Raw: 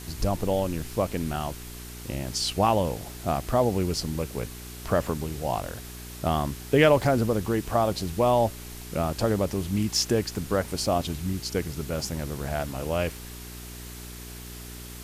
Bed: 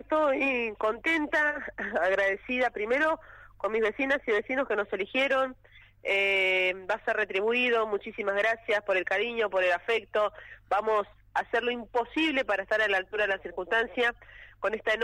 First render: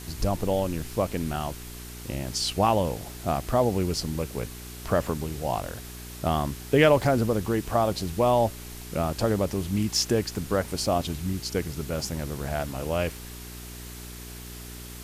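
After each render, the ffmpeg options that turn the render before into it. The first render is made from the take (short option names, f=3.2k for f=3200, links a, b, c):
-af anull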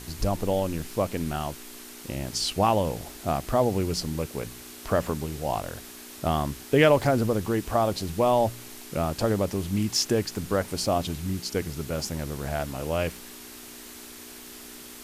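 -af "bandreject=f=60:t=h:w=4,bandreject=f=120:t=h:w=4,bandreject=f=180:t=h:w=4"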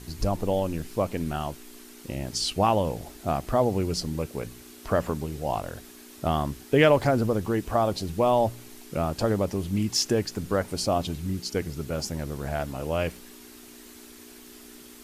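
-af "afftdn=nr=6:nf=-44"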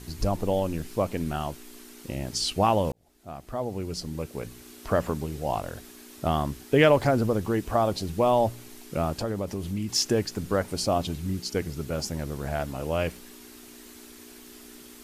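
-filter_complex "[0:a]asettb=1/sr,asplit=3[a][b][c];[a]atrim=end=9.134[d];[b]atrim=start=9.13:end=9.89,asetpts=PTS-STARTPTS,afade=t=in:d=0.004:c=qsin,afade=t=out:st=0.756:d=0.004:c=qsin,acompressor=threshold=-29dB:ratio=2:attack=3.2:release=140:knee=1:detection=peak[e];[c]atrim=start=9.886[f];[d][e]acrossfade=d=0.004:c1=hsin:c2=qsin[g];[g][f]acrossfade=d=0.004:c1=qsin:c2=hsin,asplit=2[h][i];[h]atrim=end=2.92,asetpts=PTS-STARTPTS,afade=t=out:st=2.916:d=0.004:c=hsin[j];[i]atrim=start=2.92,asetpts=PTS-STARTPTS,afade=t=in:d=1.82[k];[j][k]concat=n=2:v=0:a=1"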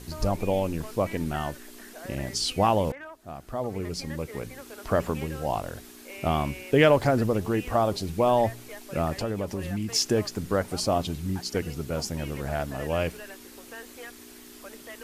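-filter_complex "[1:a]volume=-17dB[a];[0:a][a]amix=inputs=2:normalize=0"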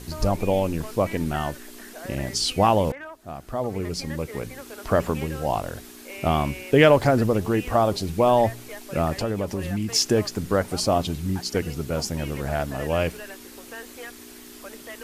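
-af "volume=3.5dB"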